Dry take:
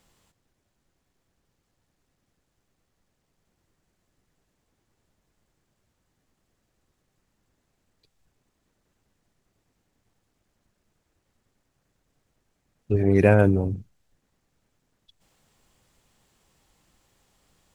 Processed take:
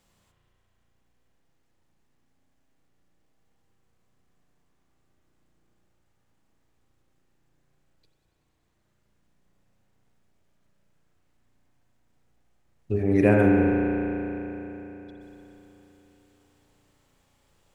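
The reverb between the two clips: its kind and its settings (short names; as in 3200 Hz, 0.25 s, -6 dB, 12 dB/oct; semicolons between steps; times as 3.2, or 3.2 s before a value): spring tank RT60 3.8 s, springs 34 ms, chirp 65 ms, DRR -1 dB; gain -3.5 dB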